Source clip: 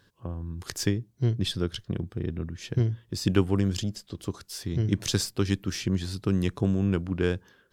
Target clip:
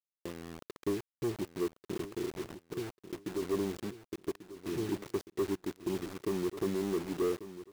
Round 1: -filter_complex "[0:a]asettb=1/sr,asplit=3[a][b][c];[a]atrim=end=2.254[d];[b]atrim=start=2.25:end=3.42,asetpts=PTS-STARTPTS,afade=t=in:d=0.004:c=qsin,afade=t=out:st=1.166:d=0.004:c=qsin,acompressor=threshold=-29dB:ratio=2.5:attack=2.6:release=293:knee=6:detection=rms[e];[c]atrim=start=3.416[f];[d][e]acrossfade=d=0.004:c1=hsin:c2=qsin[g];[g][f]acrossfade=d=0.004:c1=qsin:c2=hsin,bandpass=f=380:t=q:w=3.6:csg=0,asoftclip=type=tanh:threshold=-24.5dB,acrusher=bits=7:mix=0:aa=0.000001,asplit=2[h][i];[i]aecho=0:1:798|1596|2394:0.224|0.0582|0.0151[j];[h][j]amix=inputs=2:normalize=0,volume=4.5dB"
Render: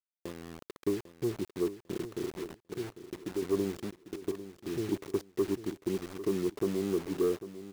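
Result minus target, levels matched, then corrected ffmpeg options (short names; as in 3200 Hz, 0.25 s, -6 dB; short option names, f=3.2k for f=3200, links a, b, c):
echo 0.343 s early; soft clip: distortion -7 dB
-filter_complex "[0:a]asettb=1/sr,asplit=3[a][b][c];[a]atrim=end=2.254[d];[b]atrim=start=2.25:end=3.42,asetpts=PTS-STARTPTS,afade=t=in:d=0.004:c=qsin,afade=t=out:st=1.166:d=0.004:c=qsin,acompressor=threshold=-29dB:ratio=2.5:attack=2.6:release=293:knee=6:detection=rms[e];[c]atrim=start=3.416[f];[d][e]acrossfade=d=0.004:c1=hsin:c2=qsin[g];[g][f]acrossfade=d=0.004:c1=qsin:c2=hsin,bandpass=f=380:t=q:w=3.6:csg=0,asoftclip=type=tanh:threshold=-30.5dB,acrusher=bits=7:mix=0:aa=0.000001,asplit=2[h][i];[i]aecho=0:1:1141|2282|3423:0.224|0.0582|0.0151[j];[h][j]amix=inputs=2:normalize=0,volume=4.5dB"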